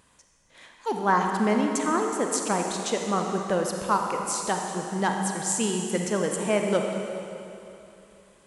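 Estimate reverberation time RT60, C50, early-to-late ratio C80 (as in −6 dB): 2.9 s, 2.5 dB, 3.5 dB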